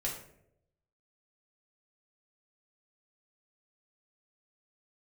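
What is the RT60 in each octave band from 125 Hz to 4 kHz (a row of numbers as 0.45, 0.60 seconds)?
1.0, 0.85, 0.95, 0.60, 0.55, 0.40 seconds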